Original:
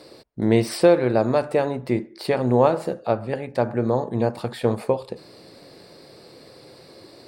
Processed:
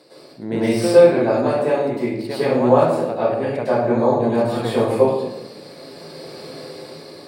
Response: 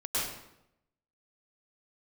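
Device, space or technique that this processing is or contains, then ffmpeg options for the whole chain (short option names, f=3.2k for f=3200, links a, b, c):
far laptop microphone: -filter_complex "[1:a]atrim=start_sample=2205[a];[0:a][a]afir=irnorm=-1:irlink=0,highpass=130,dynaudnorm=f=290:g=7:m=7.5dB,volume=-1dB"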